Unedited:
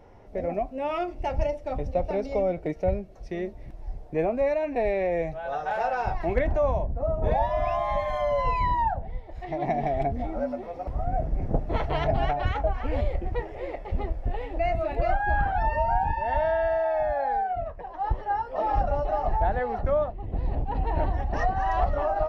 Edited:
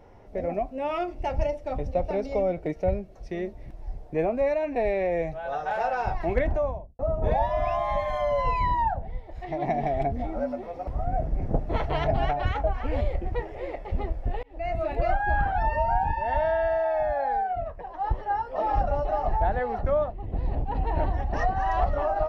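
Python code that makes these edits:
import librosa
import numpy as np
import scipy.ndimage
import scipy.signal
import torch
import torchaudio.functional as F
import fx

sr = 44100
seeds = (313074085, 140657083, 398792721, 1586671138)

y = fx.studio_fade_out(x, sr, start_s=6.44, length_s=0.55)
y = fx.edit(y, sr, fx.fade_in_span(start_s=14.43, length_s=0.4), tone=tone)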